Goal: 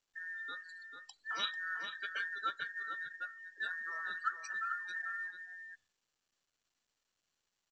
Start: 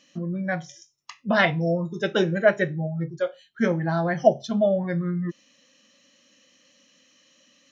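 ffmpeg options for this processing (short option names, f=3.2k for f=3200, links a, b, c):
-filter_complex "[0:a]afftfilt=real='real(if(between(b,1,1012),(2*floor((b-1)/92)+1)*92-b,b),0)':imag='imag(if(between(b,1,1012),(2*floor((b-1)/92)+1)*92-b,b),0)*if(between(b,1,1012),-1,1)':win_size=2048:overlap=0.75,afftdn=nr=34:nf=-37,aderivative,asplit=2[a][b];[b]acompressor=threshold=-47dB:ratio=8,volume=-2dB[c];[a][c]amix=inputs=2:normalize=0,asplit=2[d][e];[e]adelay=443.1,volume=-6dB,highshelf=f=4k:g=-9.97[f];[d][f]amix=inputs=2:normalize=0,volume=-6dB" -ar 16000 -c:a pcm_mulaw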